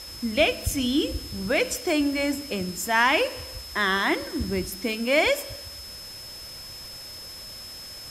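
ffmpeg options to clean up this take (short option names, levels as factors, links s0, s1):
-af "bandreject=f=5200:w=30,afwtdn=0.0063"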